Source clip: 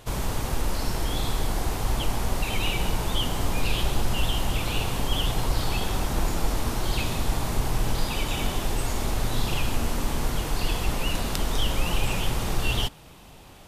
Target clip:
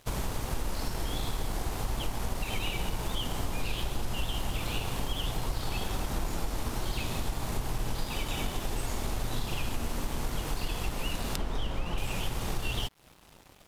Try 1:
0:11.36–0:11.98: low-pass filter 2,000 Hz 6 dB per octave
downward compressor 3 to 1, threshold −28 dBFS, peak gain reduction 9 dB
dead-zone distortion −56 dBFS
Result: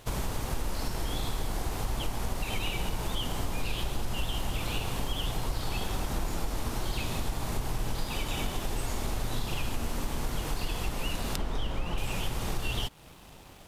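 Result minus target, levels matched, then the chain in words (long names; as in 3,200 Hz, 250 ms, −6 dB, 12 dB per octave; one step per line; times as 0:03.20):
dead-zone distortion: distortion −8 dB
0:11.36–0:11.98: low-pass filter 2,000 Hz 6 dB per octave
downward compressor 3 to 1, threshold −28 dBFS, peak gain reduction 9 dB
dead-zone distortion −47.5 dBFS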